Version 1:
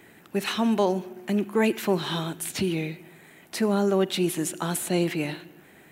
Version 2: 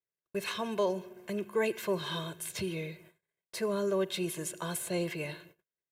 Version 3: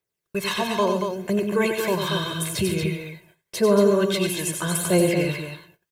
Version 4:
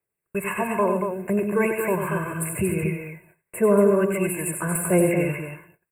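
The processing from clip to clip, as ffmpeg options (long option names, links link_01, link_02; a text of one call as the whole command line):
ffmpeg -i in.wav -af "agate=range=-42dB:threshold=-46dB:ratio=16:detection=peak,aecho=1:1:1.9:0.85,volume=-9dB" out.wav
ffmpeg -i in.wav -filter_complex "[0:a]aphaser=in_gain=1:out_gain=1:delay=1.3:decay=0.47:speed=0.81:type=triangular,asplit=2[link_01][link_02];[link_02]aecho=0:1:95|138|231:0.501|0.211|0.501[link_03];[link_01][link_03]amix=inputs=2:normalize=0,volume=8.5dB" out.wav
ffmpeg -i in.wav -filter_complex "[0:a]acrossover=split=670|3100[link_01][link_02][link_03];[link_03]aeval=exprs='clip(val(0),-1,0.0891)':channel_layout=same[link_04];[link_01][link_02][link_04]amix=inputs=3:normalize=0,asuperstop=centerf=4600:order=20:qfactor=0.96" out.wav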